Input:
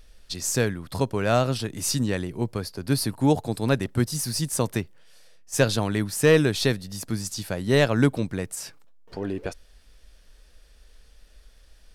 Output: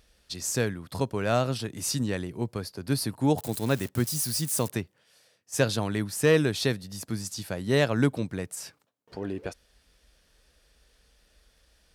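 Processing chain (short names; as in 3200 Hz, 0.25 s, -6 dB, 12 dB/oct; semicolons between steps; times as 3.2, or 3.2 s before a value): 3.38–4.72 switching spikes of -25 dBFS; HPF 60 Hz; gain -3.5 dB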